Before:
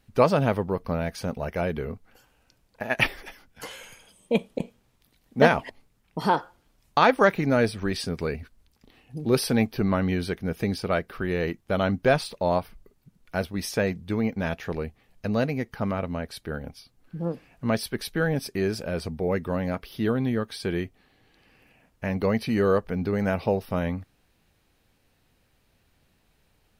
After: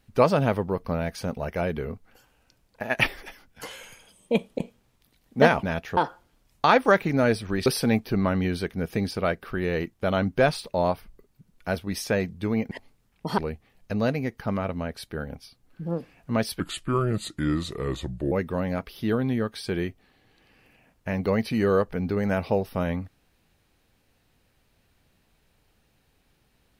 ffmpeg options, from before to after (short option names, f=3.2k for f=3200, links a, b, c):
-filter_complex "[0:a]asplit=8[a][b][c][d][e][f][g][h];[a]atrim=end=5.632[i];[b]atrim=start=14.378:end=14.722[j];[c]atrim=start=6.298:end=7.992[k];[d]atrim=start=9.328:end=14.382[l];[e]atrim=start=5.628:end=6.302[m];[f]atrim=start=14.718:end=17.944[n];[g]atrim=start=17.94:end=19.28,asetpts=PTS-STARTPTS,asetrate=34398,aresample=44100[o];[h]atrim=start=19.276[p];[i][j]acrossfade=d=0.004:c1=hsin:c2=hsin[q];[q][k]acrossfade=d=0.004:c1=hsin:c2=hsin[r];[r][l]acrossfade=d=0.004:c1=hsin:c2=hsin[s];[s][m]acrossfade=d=0.004:c1=hsin:c2=hsin[t];[t][n]acrossfade=d=0.004:c1=hsin:c2=hsin[u];[u][o]acrossfade=d=0.004:c1=hsin:c2=hsin[v];[v][p]acrossfade=d=0.004:c1=hsin:c2=hsin"